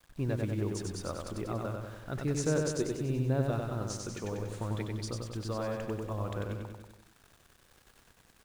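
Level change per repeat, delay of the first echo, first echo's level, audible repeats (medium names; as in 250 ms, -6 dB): -4.5 dB, 95 ms, -3.5 dB, 6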